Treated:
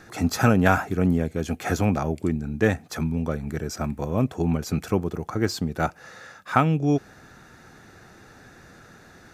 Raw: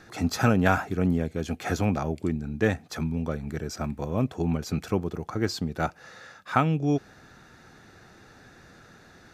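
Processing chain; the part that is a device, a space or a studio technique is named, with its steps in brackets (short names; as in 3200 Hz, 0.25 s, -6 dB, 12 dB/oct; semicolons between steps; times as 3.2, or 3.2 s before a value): exciter from parts (in parallel at -5.5 dB: HPF 2100 Hz 12 dB/oct + soft clip -23.5 dBFS, distortion -17 dB + HPF 4800 Hz 12 dB/oct); on the sum: gain +3 dB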